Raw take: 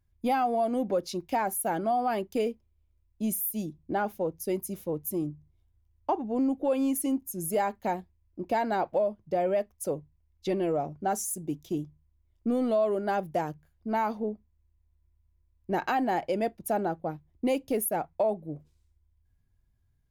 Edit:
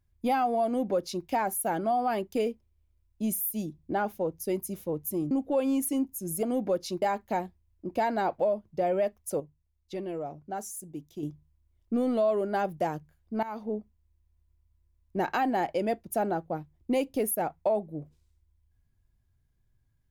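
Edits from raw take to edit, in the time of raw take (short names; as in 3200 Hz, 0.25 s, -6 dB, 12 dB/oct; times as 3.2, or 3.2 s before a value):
0.66–1.25 copy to 7.56
5.31–6.44 cut
9.94–11.77 gain -7 dB
13.97–14.29 fade in, from -16 dB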